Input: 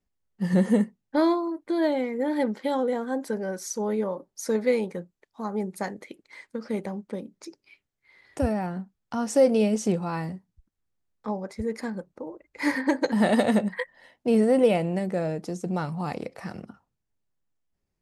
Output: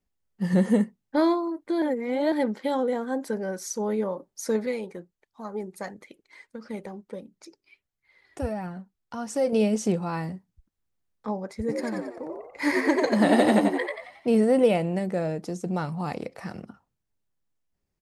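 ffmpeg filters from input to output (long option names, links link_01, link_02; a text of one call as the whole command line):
ffmpeg -i in.wav -filter_complex "[0:a]asettb=1/sr,asplit=3[link_01][link_02][link_03];[link_01]atrim=end=4.664[link_04];[link_02]atrim=start=4.66:end=9.53,asetpts=PTS-STARTPTS,afade=type=in:duration=0.004:curve=qsin,afade=type=out:start_time=4.866:duration=0.004:curve=qsin,flanger=delay=0.6:depth=2.5:regen=46:speed=1.5:shape=triangular[link_05];[link_03]atrim=start=9.526[link_06];[link_04][link_05]acrossfade=duration=0.004:curve1=hsin:curve2=qsin[link_07];[link_07][link_06]acrossfade=duration=0.004:curve1=qsin:curve2=hsin,asplit=3[link_08][link_09][link_10];[link_08]afade=type=out:start_time=11.67:duration=0.02[link_11];[link_09]asplit=7[link_12][link_13][link_14][link_15][link_16][link_17][link_18];[link_13]adelay=90,afreqshift=77,volume=-3dB[link_19];[link_14]adelay=180,afreqshift=154,volume=-10.3dB[link_20];[link_15]adelay=270,afreqshift=231,volume=-17.7dB[link_21];[link_16]adelay=360,afreqshift=308,volume=-25dB[link_22];[link_17]adelay=450,afreqshift=385,volume=-32.3dB[link_23];[link_18]adelay=540,afreqshift=462,volume=-39.7dB[link_24];[link_12][link_19][link_20][link_21][link_22][link_23][link_24]amix=inputs=7:normalize=0,afade=type=in:start_time=11.67:duration=0.02,afade=type=out:start_time=14.32:duration=0.02[link_25];[link_10]afade=type=in:start_time=14.32:duration=0.02[link_26];[link_11][link_25][link_26]amix=inputs=3:normalize=0,asplit=3[link_27][link_28][link_29];[link_27]atrim=end=1.822[link_30];[link_28]atrim=start=1.818:end=2.322,asetpts=PTS-STARTPTS,areverse[link_31];[link_29]atrim=start=2.318[link_32];[link_30][link_31]acrossfade=duration=0.004:curve1=hsin:curve2=hsin[link_33];[link_33][link_32]acrossfade=duration=0.004:curve1=hsin:curve2=hsin" out.wav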